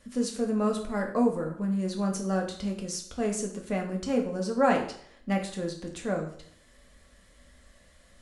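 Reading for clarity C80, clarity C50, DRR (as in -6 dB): 12.0 dB, 8.0 dB, 0.5 dB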